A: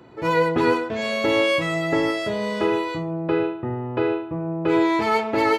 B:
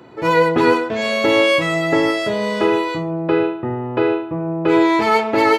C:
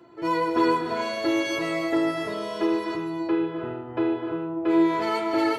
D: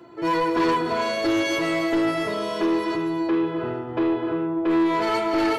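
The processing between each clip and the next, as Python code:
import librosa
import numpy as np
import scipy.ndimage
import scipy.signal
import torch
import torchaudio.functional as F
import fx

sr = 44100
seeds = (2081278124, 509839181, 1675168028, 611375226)

y1 = fx.highpass(x, sr, hz=130.0, slope=6)
y1 = F.gain(torch.from_numpy(y1), 5.5).numpy()
y2 = fx.comb_fb(y1, sr, f0_hz=340.0, decay_s=0.16, harmonics='all', damping=0.0, mix_pct=90)
y2 = fx.rev_gated(y2, sr, seeds[0], gate_ms=340, shape='rising', drr_db=4.0)
y2 = F.gain(torch.from_numpy(y2), 1.5).numpy()
y3 = fx.echo_feedback(y2, sr, ms=417, feedback_pct=38, wet_db=-21.5)
y3 = 10.0 ** (-21.5 / 20.0) * np.tanh(y3 / 10.0 ** (-21.5 / 20.0))
y3 = F.gain(torch.from_numpy(y3), 5.0).numpy()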